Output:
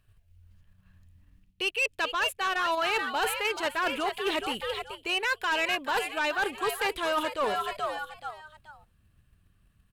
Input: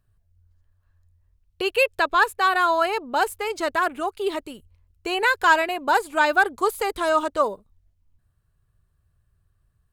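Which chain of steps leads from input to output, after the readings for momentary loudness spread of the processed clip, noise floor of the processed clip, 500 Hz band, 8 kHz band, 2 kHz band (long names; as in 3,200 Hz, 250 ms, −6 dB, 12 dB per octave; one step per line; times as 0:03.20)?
7 LU, −67 dBFS, −7.5 dB, −2.0 dB, −6.0 dB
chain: parametric band 2,700 Hz +11.5 dB 0.99 octaves
echo with shifted repeats 430 ms, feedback 31%, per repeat +100 Hz, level −11 dB
in parallel at −2 dB: output level in coarse steps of 21 dB
on the sum: parametric band 11,000 Hz +3 dB 0.55 octaves
reversed playback
downward compressor 6 to 1, threshold −23 dBFS, peak gain reduction 16.5 dB
reversed playback
soft clipping −21 dBFS, distortion −14 dB
floating-point word with a short mantissa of 6 bits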